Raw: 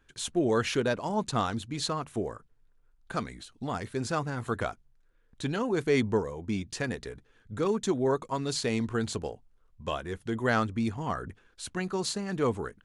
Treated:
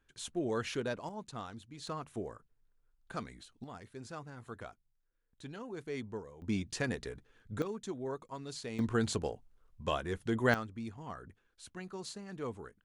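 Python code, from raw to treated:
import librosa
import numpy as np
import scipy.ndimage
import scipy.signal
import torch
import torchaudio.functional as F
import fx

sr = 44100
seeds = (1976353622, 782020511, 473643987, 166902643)

y = fx.gain(x, sr, db=fx.steps((0.0, -8.5), (1.09, -15.0), (1.87, -8.0), (3.64, -15.0), (6.42, -2.5), (7.62, -12.5), (8.79, -1.0), (10.54, -12.5)))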